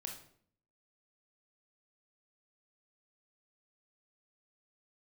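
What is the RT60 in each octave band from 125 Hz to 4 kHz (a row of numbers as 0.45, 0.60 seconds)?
0.75, 0.80, 0.65, 0.55, 0.50, 0.45 seconds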